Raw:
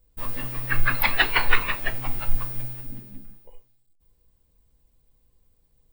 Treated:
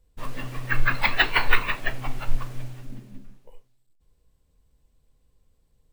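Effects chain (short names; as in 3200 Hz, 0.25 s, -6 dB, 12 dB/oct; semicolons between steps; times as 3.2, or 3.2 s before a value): careless resampling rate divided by 2×, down filtered, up hold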